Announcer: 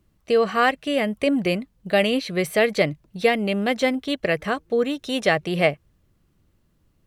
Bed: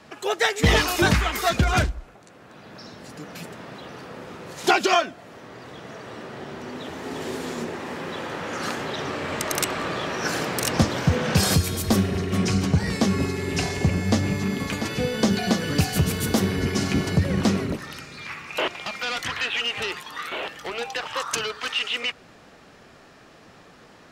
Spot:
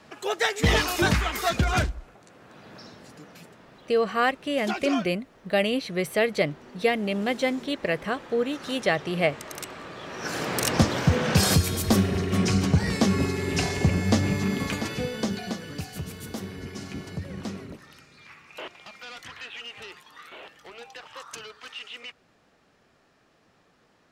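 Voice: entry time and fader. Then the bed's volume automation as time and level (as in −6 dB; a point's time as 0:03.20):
3.60 s, −4.0 dB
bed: 0:02.77 −3 dB
0:03.60 −12.5 dB
0:09.95 −12.5 dB
0:10.55 −0.5 dB
0:14.67 −0.5 dB
0:15.79 −13.5 dB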